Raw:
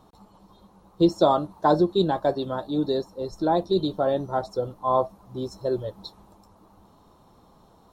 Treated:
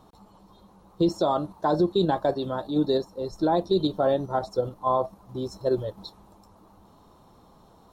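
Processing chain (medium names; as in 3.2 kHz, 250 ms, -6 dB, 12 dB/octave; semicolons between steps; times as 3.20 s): in parallel at +1.5 dB: level held to a coarse grid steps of 12 dB; on the sum: peak limiter -9.5 dBFS, peak gain reduction 5.5 dB; trim -4 dB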